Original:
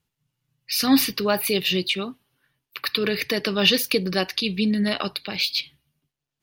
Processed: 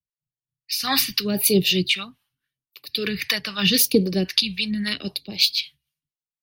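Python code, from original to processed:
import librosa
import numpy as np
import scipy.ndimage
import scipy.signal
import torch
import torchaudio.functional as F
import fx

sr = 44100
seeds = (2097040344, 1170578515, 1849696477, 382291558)

y = fx.phaser_stages(x, sr, stages=2, low_hz=340.0, high_hz=1500.0, hz=0.81, feedback_pct=25)
y = fx.harmonic_tremolo(y, sr, hz=3.8, depth_pct=70, crossover_hz=400.0)
y = fx.band_widen(y, sr, depth_pct=70)
y = y * 10.0 ** (6.5 / 20.0)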